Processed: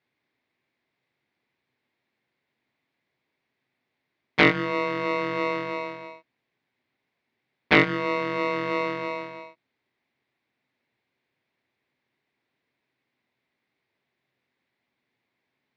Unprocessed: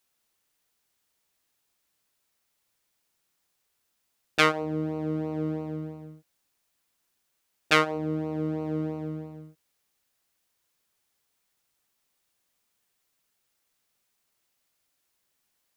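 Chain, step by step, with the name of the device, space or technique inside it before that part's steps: ring modulator pedal into a guitar cabinet (polarity switched at an audio rate 800 Hz; speaker cabinet 87–3500 Hz, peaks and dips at 130 Hz +8 dB, 250 Hz +8 dB, 370 Hz +5 dB, 1300 Hz -6 dB, 2100 Hz +6 dB, 3000 Hz -6 dB); gain +3 dB

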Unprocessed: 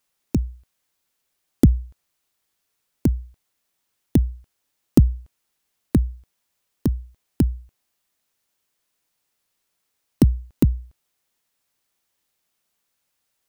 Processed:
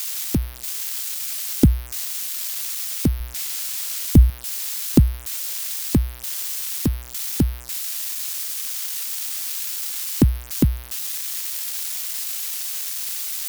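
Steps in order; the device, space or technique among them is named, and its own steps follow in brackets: 3.2–4.3 low shelf 130 Hz +11.5 dB; budget class-D amplifier (switching dead time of 0.069 ms; switching spikes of -13 dBFS)

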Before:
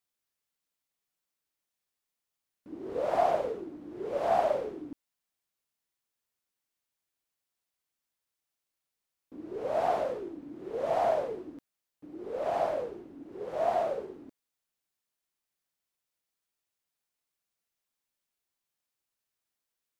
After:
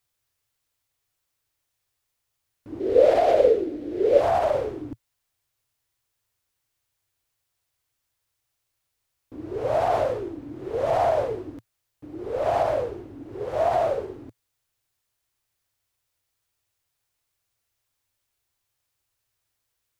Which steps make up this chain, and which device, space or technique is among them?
car stereo with a boomy subwoofer (resonant low shelf 140 Hz +7 dB, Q 3; limiter -21.5 dBFS, peak gain reduction 7.5 dB); 2.8–4.21 graphic EQ 125/250/500/1000/2000/4000 Hz -10/+4/+12/-11/+4/+5 dB; gain +8 dB

